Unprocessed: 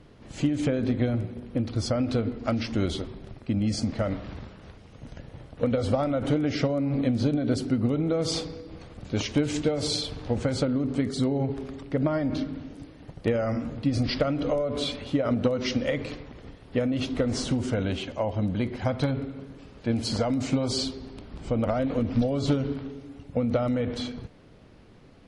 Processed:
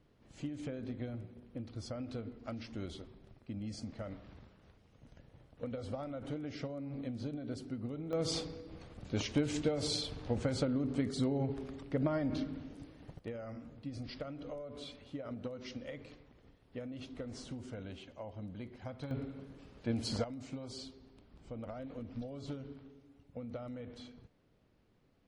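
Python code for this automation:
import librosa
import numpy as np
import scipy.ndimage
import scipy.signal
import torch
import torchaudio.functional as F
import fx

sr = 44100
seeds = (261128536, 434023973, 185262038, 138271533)

y = fx.gain(x, sr, db=fx.steps((0.0, -16.0), (8.13, -7.5), (13.19, -18.0), (19.11, -8.5), (20.24, -18.5)))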